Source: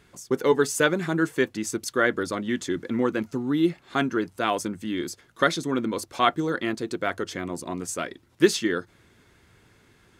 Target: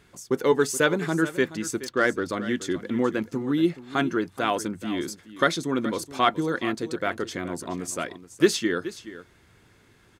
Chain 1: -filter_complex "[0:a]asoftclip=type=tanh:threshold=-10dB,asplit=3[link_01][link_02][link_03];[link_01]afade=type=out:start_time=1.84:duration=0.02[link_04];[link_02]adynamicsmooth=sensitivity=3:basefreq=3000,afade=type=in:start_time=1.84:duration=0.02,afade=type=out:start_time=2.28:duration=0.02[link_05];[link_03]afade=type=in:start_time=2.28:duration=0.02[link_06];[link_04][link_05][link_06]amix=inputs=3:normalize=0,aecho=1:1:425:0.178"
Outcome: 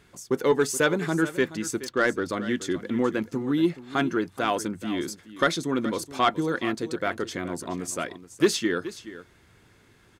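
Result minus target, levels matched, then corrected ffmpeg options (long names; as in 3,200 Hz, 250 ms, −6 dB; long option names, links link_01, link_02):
soft clipping: distortion +12 dB
-filter_complex "[0:a]asoftclip=type=tanh:threshold=-2.5dB,asplit=3[link_01][link_02][link_03];[link_01]afade=type=out:start_time=1.84:duration=0.02[link_04];[link_02]adynamicsmooth=sensitivity=3:basefreq=3000,afade=type=in:start_time=1.84:duration=0.02,afade=type=out:start_time=2.28:duration=0.02[link_05];[link_03]afade=type=in:start_time=2.28:duration=0.02[link_06];[link_04][link_05][link_06]amix=inputs=3:normalize=0,aecho=1:1:425:0.178"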